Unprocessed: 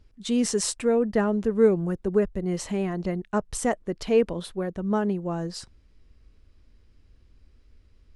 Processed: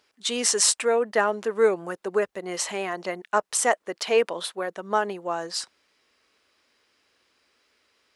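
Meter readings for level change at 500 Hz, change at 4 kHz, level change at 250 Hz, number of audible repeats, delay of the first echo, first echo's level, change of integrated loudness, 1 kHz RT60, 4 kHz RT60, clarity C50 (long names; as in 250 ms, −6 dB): 0.0 dB, +8.5 dB, −10.5 dB, no echo audible, no echo audible, no echo audible, +1.0 dB, no reverb audible, no reverb audible, no reverb audible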